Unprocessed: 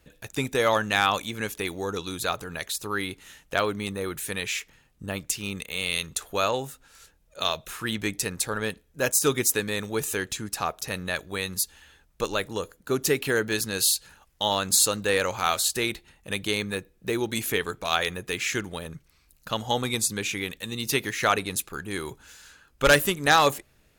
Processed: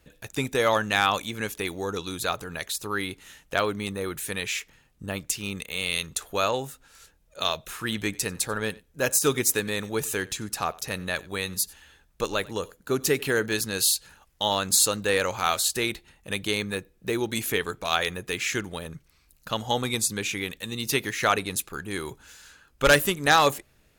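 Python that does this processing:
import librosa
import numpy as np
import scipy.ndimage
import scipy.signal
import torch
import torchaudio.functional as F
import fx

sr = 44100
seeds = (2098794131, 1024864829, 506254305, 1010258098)

y = fx.echo_single(x, sr, ms=92, db=-23.0, at=(7.71, 13.46))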